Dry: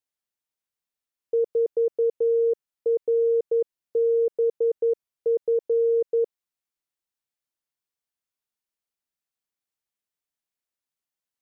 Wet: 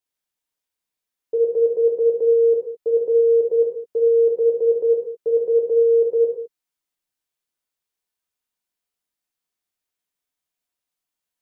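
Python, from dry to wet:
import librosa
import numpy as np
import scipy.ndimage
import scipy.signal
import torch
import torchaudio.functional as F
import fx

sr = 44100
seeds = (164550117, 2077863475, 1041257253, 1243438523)

y = fx.rev_gated(x, sr, seeds[0], gate_ms=240, shape='falling', drr_db=-2.5)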